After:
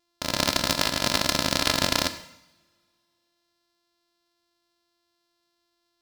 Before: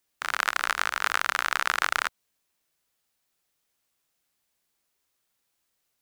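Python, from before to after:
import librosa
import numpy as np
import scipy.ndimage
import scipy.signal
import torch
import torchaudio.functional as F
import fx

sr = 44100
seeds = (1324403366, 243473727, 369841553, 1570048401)

y = np.r_[np.sort(x[:len(x) // 128 * 128].reshape(-1, 128), axis=1).ravel(), x[len(x) // 128 * 128:]]
y = fx.peak_eq(y, sr, hz=4600.0, db=10.5, octaves=1.1)
y = fx.rev_double_slope(y, sr, seeds[0], early_s=0.78, late_s=2.6, knee_db=-27, drr_db=8.5)
y = F.gain(torch.from_numpy(y), -1.0).numpy()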